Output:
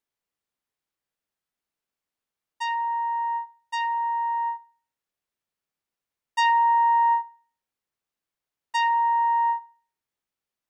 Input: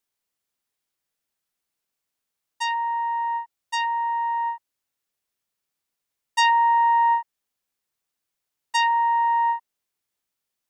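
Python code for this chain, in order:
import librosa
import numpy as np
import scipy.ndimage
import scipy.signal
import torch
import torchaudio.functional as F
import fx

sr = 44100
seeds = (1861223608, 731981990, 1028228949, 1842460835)

p1 = fx.high_shelf(x, sr, hz=3600.0, db=-8.5)
p2 = p1 + fx.echo_banded(p1, sr, ms=71, feedback_pct=43, hz=1900.0, wet_db=-17.5, dry=0)
y = p2 * librosa.db_to_amplitude(-1.5)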